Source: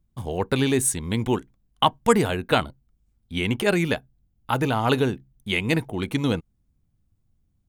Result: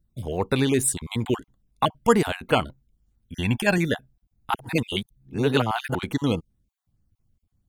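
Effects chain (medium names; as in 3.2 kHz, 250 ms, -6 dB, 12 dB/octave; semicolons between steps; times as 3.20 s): random holes in the spectrogram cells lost 24%; 3.34–3.78 s: comb 1.2 ms, depth 62%; 4.54–5.95 s: reverse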